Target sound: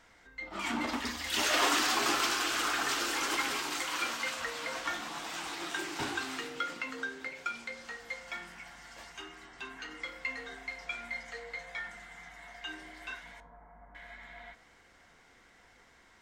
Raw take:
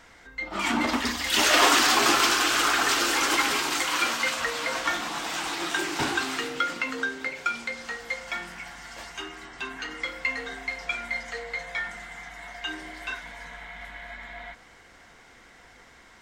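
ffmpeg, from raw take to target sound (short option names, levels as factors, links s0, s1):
-filter_complex "[0:a]asettb=1/sr,asplit=3[s0][s1][s2];[s0]atrim=end=13.404[s3];[s1]atrim=start=13.4:end=13.95,asetpts=PTS-STARTPTS,afade=t=in:d=0.004:c=qsin,afade=t=out:st=0.546:d=0.004:c=qsin,lowpass=f=1100:w=0.5412,lowpass=f=1100:w=1.3066[s4];[s2]atrim=start=13.946[s5];[s3][s4]acrossfade=d=0.004:c1=hsin:c2=qsin[s6];[s6][s5]acrossfade=d=0.004:c1=qsin:c2=hsin,flanger=delay=9:depth=5.2:regen=85:speed=0.51:shape=triangular,volume=0.631"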